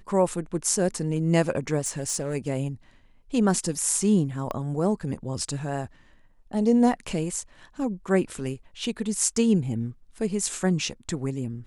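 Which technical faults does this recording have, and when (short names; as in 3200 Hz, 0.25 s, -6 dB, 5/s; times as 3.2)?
1.8–2.35 clipped -21.5 dBFS
4.51 pop -18 dBFS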